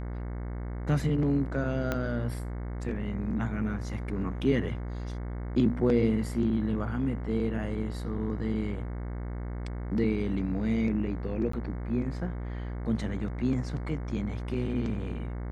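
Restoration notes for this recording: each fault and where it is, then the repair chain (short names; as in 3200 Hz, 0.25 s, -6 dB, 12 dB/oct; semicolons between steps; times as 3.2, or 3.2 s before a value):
buzz 60 Hz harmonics 37 -35 dBFS
1.92 pop -15 dBFS
11.52–11.53 gap 14 ms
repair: de-click; de-hum 60 Hz, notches 37; interpolate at 11.52, 14 ms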